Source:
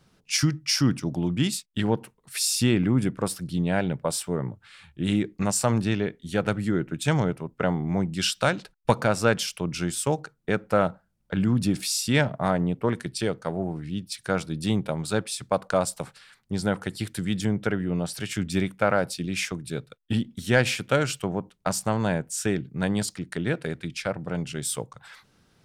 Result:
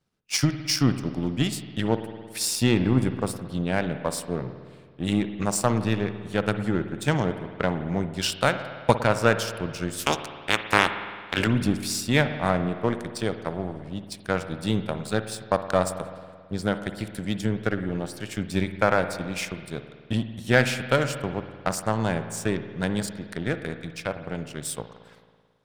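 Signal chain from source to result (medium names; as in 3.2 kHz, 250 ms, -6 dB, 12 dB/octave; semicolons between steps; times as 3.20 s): 9.98–11.46 s: spectral peaks clipped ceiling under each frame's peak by 28 dB; power-law waveshaper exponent 1.4; spring tank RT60 1.8 s, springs 54 ms, chirp 35 ms, DRR 9.5 dB; trim +4.5 dB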